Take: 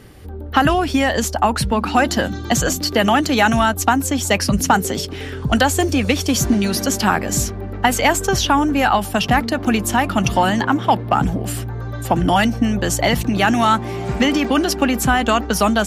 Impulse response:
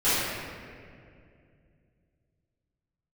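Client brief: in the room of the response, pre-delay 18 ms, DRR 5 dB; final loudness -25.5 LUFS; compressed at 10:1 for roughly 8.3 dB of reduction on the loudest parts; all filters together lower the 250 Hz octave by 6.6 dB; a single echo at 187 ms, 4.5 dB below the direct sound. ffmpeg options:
-filter_complex "[0:a]equalizer=f=250:t=o:g=-8,acompressor=threshold=0.112:ratio=10,aecho=1:1:187:0.596,asplit=2[s0][s1];[1:a]atrim=start_sample=2205,adelay=18[s2];[s1][s2]afir=irnorm=-1:irlink=0,volume=0.0841[s3];[s0][s3]amix=inputs=2:normalize=0,volume=0.631"

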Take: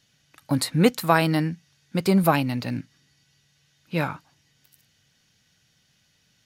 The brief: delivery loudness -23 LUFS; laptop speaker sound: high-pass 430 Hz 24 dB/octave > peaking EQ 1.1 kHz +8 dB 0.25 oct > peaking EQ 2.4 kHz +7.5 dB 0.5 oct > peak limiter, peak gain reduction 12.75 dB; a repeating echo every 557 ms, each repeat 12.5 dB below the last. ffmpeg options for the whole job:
-af "highpass=f=430:w=0.5412,highpass=f=430:w=1.3066,equalizer=f=1100:t=o:w=0.25:g=8,equalizer=f=2400:t=o:w=0.5:g=7.5,aecho=1:1:557|1114|1671:0.237|0.0569|0.0137,volume=2.51,alimiter=limit=0.422:level=0:latency=1"

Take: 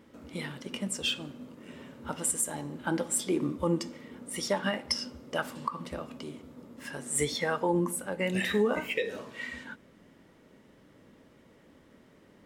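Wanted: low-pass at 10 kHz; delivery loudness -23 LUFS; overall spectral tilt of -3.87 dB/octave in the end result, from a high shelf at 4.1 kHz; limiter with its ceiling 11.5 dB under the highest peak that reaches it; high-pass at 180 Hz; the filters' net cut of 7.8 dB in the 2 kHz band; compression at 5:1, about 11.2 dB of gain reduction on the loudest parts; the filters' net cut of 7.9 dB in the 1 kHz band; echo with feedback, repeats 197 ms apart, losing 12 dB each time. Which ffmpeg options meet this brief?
-af "highpass=180,lowpass=10000,equalizer=f=1000:t=o:g=-8,equalizer=f=2000:t=o:g=-6,highshelf=f=4100:g=-5.5,acompressor=threshold=0.0141:ratio=5,alimiter=level_in=4.22:limit=0.0631:level=0:latency=1,volume=0.237,aecho=1:1:197|394|591:0.251|0.0628|0.0157,volume=14.1"

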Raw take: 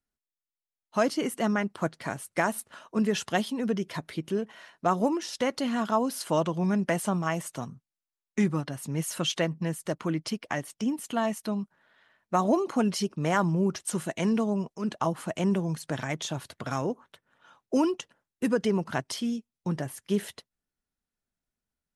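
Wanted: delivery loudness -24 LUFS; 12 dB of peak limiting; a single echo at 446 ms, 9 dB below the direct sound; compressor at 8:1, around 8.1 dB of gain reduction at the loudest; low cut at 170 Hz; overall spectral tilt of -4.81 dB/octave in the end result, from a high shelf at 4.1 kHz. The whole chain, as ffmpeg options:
-af "highpass=170,highshelf=f=4100:g=-5,acompressor=threshold=0.0398:ratio=8,alimiter=level_in=1.58:limit=0.0631:level=0:latency=1,volume=0.631,aecho=1:1:446:0.355,volume=5.31"

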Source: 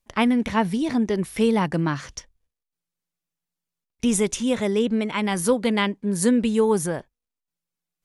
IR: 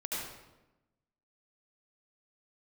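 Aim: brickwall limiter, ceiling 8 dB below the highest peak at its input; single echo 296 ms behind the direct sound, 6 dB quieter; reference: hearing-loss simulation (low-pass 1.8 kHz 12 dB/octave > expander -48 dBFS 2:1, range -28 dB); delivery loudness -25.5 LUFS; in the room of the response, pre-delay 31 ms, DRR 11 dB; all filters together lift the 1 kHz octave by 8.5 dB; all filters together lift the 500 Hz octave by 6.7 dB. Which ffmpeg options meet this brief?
-filter_complex "[0:a]equalizer=f=500:t=o:g=6,equalizer=f=1000:t=o:g=8.5,alimiter=limit=0.299:level=0:latency=1,aecho=1:1:296:0.501,asplit=2[s0][s1];[1:a]atrim=start_sample=2205,adelay=31[s2];[s1][s2]afir=irnorm=-1:irlink=0,volume=0.178[s3];[s0][s3]amix=inputs=2:normalize=0,lowpass=1800,agate=range=0.0398:threshold=0.00398:ratio=2,volume=0.531"

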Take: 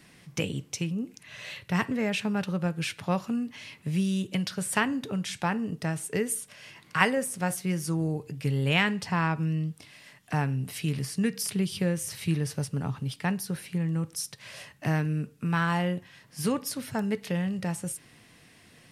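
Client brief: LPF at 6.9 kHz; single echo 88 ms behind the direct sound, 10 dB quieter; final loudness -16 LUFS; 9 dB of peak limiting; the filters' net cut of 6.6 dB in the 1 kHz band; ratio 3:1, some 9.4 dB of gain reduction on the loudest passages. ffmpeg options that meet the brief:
-af "lowpass=6900,equalizer=f=1000:t=o:g=-8.5,acompressor=threshold=0.02:ratio=3,alimiter=level_in=1.58:limit=0.0631:level=0:latency=1,volume=0.631,aecho=1:1:88:0.316,volume=11.9"

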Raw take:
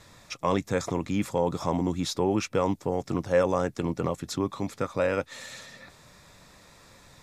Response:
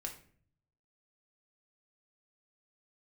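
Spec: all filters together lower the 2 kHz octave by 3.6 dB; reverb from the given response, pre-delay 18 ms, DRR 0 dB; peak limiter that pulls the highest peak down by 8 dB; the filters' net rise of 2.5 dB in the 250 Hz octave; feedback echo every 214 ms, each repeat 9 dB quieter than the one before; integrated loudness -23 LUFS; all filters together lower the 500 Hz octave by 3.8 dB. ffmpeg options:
-filter_complex "[0:a]equalizer=f=250:t=o:g=5,equalizer=f=500:t=o:g=-5.5,equalizer=f=2000:t=o:g=-4.5,alimiter=limit=0.0891:level=0:latency=1,aecho=1:1:214|428|642|856:0.355|0.124|0.0435|0.0152,asplit=2[s0][s1];[1:a]atrim=start_sample=2205,adelay=18[s2];[s1][s2]afir=irnorm=-1:irlink=0,volume=1.19[s3];[s0][s3]amix=inputs=2:normalize=0,volume=2"

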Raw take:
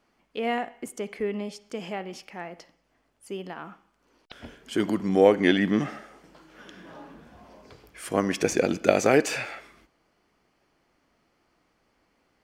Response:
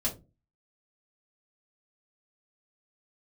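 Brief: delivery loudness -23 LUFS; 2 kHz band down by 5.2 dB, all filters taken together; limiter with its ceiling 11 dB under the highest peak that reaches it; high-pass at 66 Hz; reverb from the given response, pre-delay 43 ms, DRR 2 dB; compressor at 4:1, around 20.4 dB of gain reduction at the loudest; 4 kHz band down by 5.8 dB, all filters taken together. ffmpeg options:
-filter_complex "[0:a]highpass=66,equalizer=f=2000:t=o:g=-5,equalizer=f=4000:t=o:g=-6,acompressor=threshold=0.0126:ratio=4,alimiter=level_in=1.88:limit=0.0631:level=0:latency=1,volume=0.531,asplit=2[s0][s1];[1:a]atrim=start_sample=2205,adelay=43[s2];[s1][s2]afir=irnorm=-1:irlink=0,volume=0.473[s3];[s0][s3]amix=inputs=2:normalize=0,volume=7.5"

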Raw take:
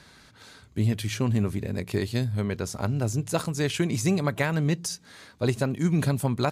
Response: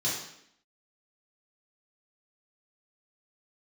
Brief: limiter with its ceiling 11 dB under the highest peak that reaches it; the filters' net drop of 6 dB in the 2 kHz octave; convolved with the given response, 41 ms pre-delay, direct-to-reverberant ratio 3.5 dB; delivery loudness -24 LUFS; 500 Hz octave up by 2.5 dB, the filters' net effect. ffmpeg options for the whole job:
-filter_complex "[0:a]equalizer=f=500:t=o:g=3.5,equalizer=f=2000:t=o:g=-8,alimiter=limit=0.075:level=0:latency=1,asplit=2[s0][s1];[1:a]atrim=start_sample=2205,adelay=41[s2];[s1][s2]afir=irnorm=-1:irlink=0,volume=0.282[s3];[s0][s3]amix=inputs=2:normalize=0,volume=1.78"

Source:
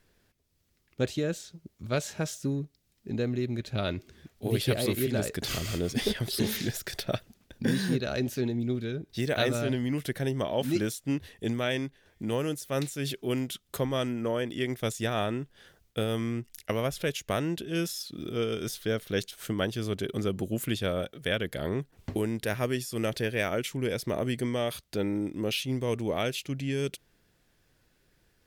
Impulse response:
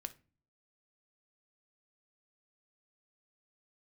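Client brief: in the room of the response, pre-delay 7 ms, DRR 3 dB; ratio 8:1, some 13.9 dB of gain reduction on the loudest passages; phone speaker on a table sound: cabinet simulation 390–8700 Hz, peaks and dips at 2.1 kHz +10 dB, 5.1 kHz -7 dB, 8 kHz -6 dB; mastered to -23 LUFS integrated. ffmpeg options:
-filter_complex "[0:a]acompressor=threshold=0.0141:ratio=8,asplit=2[s0][s1];[1:a]atrim=start_sample=2205,adelay=7[s2];[s1][s2]afir=irnorm=-1:irlink=0,volume=1[s3];[s0][s3]amix=inputs=2:normalize=0,highpass=f=390:w=0.5412,highpass=f=390:w=1.3066,equalizer=f=2100:t=q:w=4:g=10,equalizer=f=5100:t=q:w=4:g=-7,equalizer=f=8000:t=q:w=4:g=-6,lowpass=f=8700:w=0.5412,lowpass=f=8700:w=1.3066,volume=9.44"

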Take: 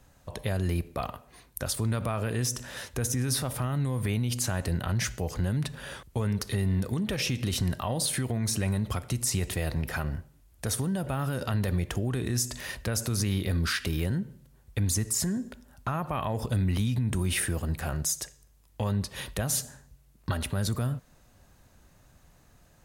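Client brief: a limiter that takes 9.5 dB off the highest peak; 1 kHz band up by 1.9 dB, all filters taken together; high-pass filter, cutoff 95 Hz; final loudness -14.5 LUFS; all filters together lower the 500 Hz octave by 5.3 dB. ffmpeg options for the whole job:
-af "highpass=95,equalizer=f=500:t=o:g=-8.5,equalizer=f=1000:t=o:g=5,volume=8.41,alimiter=limit=0.631:level=0:latency=1"

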